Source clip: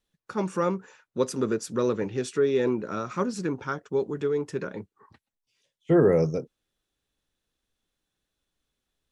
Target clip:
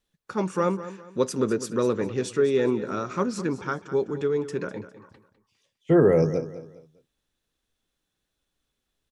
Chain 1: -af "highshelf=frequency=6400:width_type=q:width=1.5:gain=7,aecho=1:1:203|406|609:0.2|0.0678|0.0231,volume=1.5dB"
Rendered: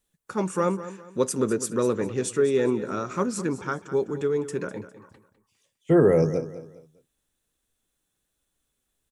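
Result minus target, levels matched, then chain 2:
8,000 Hz band +5.5 dB
-af "aecho=1:1:203|406|609:0.2|0.0678|0.0231,volume=1.5dB"

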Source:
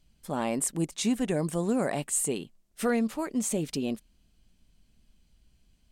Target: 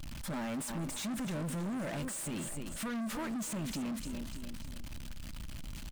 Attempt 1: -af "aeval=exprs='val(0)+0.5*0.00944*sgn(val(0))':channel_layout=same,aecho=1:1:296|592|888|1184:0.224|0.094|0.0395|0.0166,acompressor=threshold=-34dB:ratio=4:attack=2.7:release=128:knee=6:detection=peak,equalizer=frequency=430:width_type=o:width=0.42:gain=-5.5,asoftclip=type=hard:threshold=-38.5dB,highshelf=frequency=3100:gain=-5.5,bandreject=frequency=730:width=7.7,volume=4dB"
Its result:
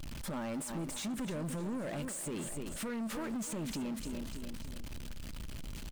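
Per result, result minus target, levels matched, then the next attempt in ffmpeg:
downward compressor: peak gain reduction +6.5 dB; 500 Hz band +2.5 dB
-af "aeval=exprs='val(0)+0.5*0.00944*sgn(val(0))':channel_layout=same,aecho=1:1:296|592|888|1184:0.224|0.094|0.0395|0.0166,acompressor=threshold=-25.5dB:ratio=4:attack=2.7:release=128:knee=6:detection=peak,equalizer=frequency=430:width_type=o:width=0.42:gain=-5.5,asoftclip=type=hard:threshold=-38.5dB,highshelf=frequency=3100:gain=-5.5,bandreject=frequency=730:width=7.7,volume=4dB"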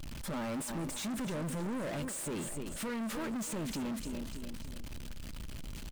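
500 Hz band +3.0 dB
-af "aeval=exprs='val(0)+0.5*0.00944*sgn(val(0))':channel_layout=same,aecho=1:1:296|592|888|1184:0.224|0.094|0.0395|0.0166,acompressor=threshold=-25.5dB:ratio=4:attack=2.7:release=128:knee=6:detection=peak,equalizer=frequency=430:width_type=o:width=0.42:gain=-16.5,asoftclip=type=hard:threshold=-38.5dB,highshelf=frequency=3100:gain=-5.5,bandreject=frequency=730:width=7.7,volume=4dB"

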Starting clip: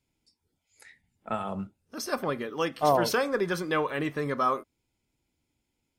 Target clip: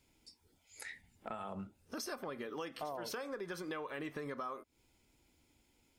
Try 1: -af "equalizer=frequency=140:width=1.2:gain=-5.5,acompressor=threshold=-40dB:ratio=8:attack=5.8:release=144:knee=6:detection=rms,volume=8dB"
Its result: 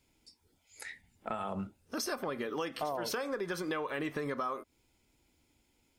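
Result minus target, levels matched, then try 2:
downward compressor: peak gain reduction −6.5 dB
-af "equalizer=frequency=140:width=1.2:gain=-5.5,acompressor=threshold=-47.5dB:ratio=8:attack=5.8:release=144:knee=6:detection=rms,volume=8dB"

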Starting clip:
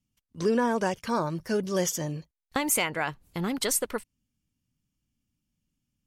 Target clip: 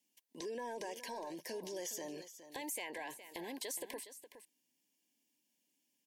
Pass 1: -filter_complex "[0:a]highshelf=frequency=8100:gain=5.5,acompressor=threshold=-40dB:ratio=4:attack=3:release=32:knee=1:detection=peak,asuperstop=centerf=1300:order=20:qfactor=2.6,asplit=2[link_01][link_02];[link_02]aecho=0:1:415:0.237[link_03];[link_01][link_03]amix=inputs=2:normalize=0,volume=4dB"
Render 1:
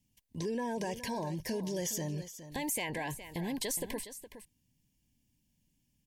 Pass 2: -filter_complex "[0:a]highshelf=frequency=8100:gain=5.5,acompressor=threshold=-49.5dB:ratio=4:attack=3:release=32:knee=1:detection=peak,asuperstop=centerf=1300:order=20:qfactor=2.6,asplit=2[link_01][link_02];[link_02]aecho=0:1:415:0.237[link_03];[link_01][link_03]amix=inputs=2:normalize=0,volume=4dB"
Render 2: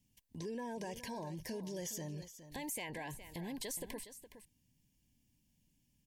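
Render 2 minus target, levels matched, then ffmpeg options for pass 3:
250 Hz band +4.0 dB
-filter_complex "[0:a]highpass=frequency=310:width=0.5412,highpass=frequency=310:width=1.3066,highshelf=frequency=8100:gain=5.5,acompressor=threshold=-49.5dB:ratio=4:attack=3:release=32:knee=1:detection=peak,asuperstop=centerf=1300:order=20:qfactor=2.6,asplit=2[link_01][link_02];[link_02]aecho=0:1:415:0.237[link_03];[link_01][link_03]amix=inputs=2:normalize=0,volume=4dB"

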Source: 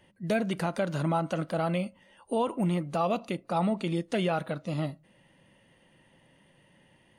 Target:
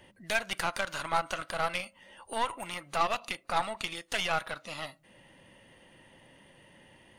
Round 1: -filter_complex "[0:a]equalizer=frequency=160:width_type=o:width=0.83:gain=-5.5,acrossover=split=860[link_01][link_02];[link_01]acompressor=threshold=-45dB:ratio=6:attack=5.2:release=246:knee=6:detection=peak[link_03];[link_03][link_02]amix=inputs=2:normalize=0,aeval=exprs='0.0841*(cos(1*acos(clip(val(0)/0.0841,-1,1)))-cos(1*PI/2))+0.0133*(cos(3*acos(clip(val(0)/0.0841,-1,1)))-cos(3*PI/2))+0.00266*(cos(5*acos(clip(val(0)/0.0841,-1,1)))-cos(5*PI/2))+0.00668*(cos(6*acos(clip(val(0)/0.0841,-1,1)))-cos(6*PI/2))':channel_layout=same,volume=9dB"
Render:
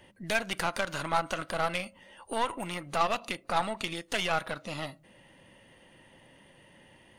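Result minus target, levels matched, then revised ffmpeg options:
downward compressor: peak gain reduction −9.5 dB
-filter_complex "[0:a]equalizer=frequency=160:width_type=o:width=0.83:gain=-5.5,acrossover=split=860[link_01][link_02];[link_01]acompressor=threshold=-56.5dB:ratio=6:attack=5.2:release=246:knee=6:detection=peak[link_03];[link_03][link_02]amix=inputs=2:normalize=0,aeval=exprs='0.0841*(cos(1*acos(clip(val(0)/0.0841,-1,1)))-cos(1*PI/2))+0.0133*(cos(3*acos(clip(val(0)/0.0841,-1,1)))-cos(3*PI/2))+0.00266*(cos(5*acos(clip(val(0)/0.0841,-1,1)))-cos(5*PI/2))+0.00668*(cos(6*acos(clip(val(0)/0.0841,-1,1)))-cos(6*PI/2))':channel_layout=same,volume=9dB"

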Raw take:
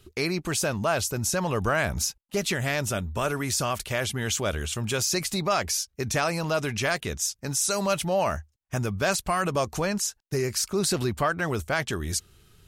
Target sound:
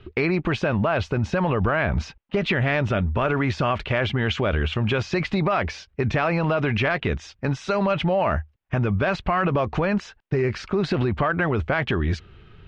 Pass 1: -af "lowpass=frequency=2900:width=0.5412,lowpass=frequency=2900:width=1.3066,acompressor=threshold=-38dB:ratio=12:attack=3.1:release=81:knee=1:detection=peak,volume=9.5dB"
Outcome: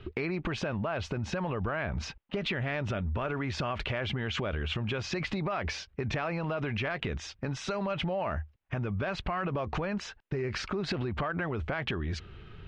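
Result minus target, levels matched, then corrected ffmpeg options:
downward compressor: peak gain reduction +10.5 dB
-af "lowpass=frequency=2900:width=0.5412,lowpass=frequency=2900:width=1.3066,acompressor=threshold=-26.5dB:ratio=12:attack=3.1:release=81:knee=1:detection=peak,volume=9.5dB"

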